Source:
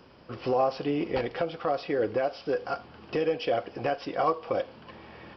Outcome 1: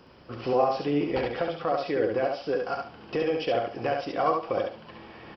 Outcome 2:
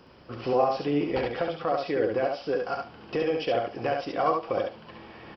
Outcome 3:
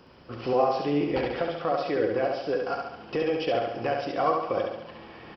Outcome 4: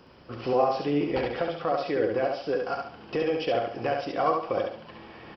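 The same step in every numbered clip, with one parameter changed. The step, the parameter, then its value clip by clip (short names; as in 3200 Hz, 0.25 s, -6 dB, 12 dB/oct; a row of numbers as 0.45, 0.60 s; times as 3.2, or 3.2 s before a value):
feedback echo, feedback: 25, 15, 55, 37%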